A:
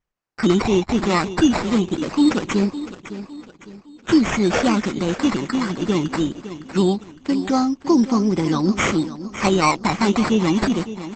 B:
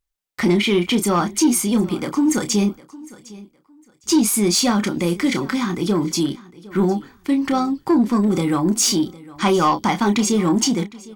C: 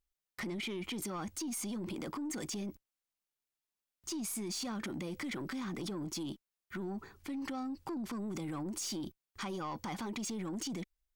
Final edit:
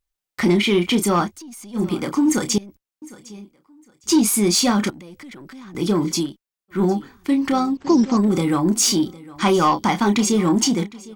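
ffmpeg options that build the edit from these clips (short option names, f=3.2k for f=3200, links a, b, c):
-filter_complex "[2:a]asplit=4[a][b][c][d];[1:a]asplit=6[e][f][g][h][i][j];[e]atrim=end=1.32[k];[a]atrim=start=1.22:end=1.83[l];[f]atrim=start=1.73:end=2.582[m];[b]atrim=start=2.578:end=3.022[n];[g]atrim=start=3.018:end=4.902[o];[c]atrim=start=4.898:end=5.752[p];[h]atrim=start=5.748:end=6.33[q];[d]atrim=start=6.17:end=6.84[r];[i]atrim=start=6.68:end=7.772[s];[0:a]atrim=start=7.768:end=8.172[t];[j]atrim=start=8.168[u];[k][l]acrossfade=d=0.1:c1=tri:c2=tri[v];[v][m]acrossfade=d=0.1:c1=tri:c2=tri[w];[w][n]acrossfade=d=0.004:c1=hsin:c2=hsin[x];[x][o]acrossfade=d=0.004:c1=hsin:c2=hsin[y];[y][p]acrossfade=d=0.004:c1=hsin:c2=hsin[z];[z][q]acrossfade=d=0.004:c1=hsin:c2=hsin[aa];[aa][r]acrossfade=d=0.16:c1=tri:c2=tri[ab];[ab][s]acrossfade=d=0.16:c1=tri:c2=tri[ac];[ac][t]acrossfade=d=0.004:c1=hsin:c2=hsin[ad];[ad][u]acrossfade=d=0.004:c1=hsin:c2=hsin"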